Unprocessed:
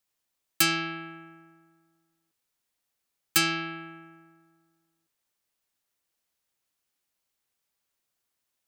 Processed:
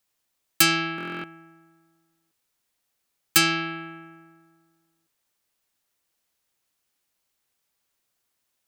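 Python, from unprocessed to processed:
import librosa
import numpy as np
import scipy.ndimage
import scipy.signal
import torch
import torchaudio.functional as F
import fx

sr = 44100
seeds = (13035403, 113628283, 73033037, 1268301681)

y = fx.buffer_glitch(x, sr, at_s=(0.96,), block=1024, repeats=11)
y = F.gain(torch.from_numpy(y), 4.5).numpy()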